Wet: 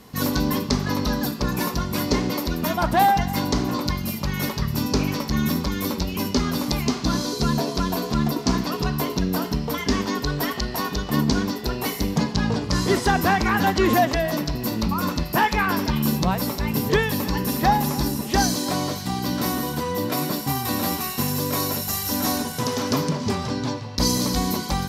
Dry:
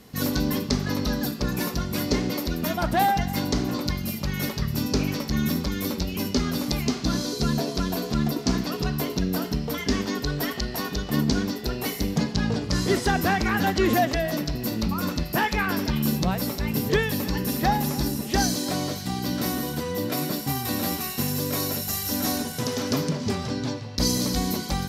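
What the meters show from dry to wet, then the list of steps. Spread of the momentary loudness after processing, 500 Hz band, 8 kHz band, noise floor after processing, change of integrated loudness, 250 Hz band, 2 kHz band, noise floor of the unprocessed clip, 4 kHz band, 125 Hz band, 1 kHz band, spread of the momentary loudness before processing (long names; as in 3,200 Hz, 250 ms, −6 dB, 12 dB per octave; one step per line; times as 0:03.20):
6 LU, +2.5 dB, +2.0 dB, −32 dBFS, +2.5 dB, +2.0 dB, +2.5 dB, −34 dBFS, +2.0 dB, +2.0 dB, +5.0 dB, 5 LU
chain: parametric band 1,000 Hz +7 dB 0.47 octaves
level +2 dB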